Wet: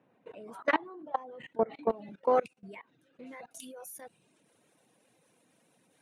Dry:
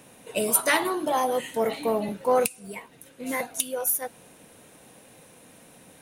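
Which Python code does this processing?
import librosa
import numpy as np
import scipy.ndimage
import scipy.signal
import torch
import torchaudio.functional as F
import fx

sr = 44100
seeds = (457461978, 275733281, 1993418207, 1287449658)

y = fx.lowpass(x, sr, hz=fx.steps((0.0, 1700.0), (1.9, 3100.0), (3.51, 9800.0)), slope=12)
y = fx.dereverb_blind(y, sr, rt60_s=0.73)
y = scipy.signal.sosfilt(scipy.signal.butter(4, 110.0, 'highpass', fs=sr, output='sos'), y)
y = fx.peak_eq(y, sr, hz=330.0, db=2.5, octaves=0.33)
y = fx.level_steps(y, sr, step_db=23)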